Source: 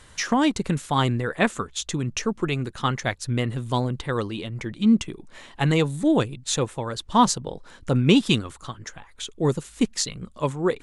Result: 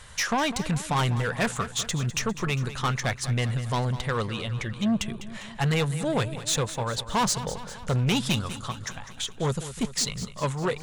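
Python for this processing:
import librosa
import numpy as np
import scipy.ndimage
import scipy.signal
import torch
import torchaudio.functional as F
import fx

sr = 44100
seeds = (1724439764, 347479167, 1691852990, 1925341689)

y = fx.peak_eq(x, sr, hz=310.0, db=-12.5, octaves=0.74)
y = 10.0 ** (-23.5 / 20.0) * np.tanh(y / 10.0 ** (-23.5 / 20.0))
y = fx.echo_feedback(y, sr, ms=201, feedback_pct=59, wet_db=-13.5)
y = F.gain(torch.from_numpy(y), 3.5).numpy()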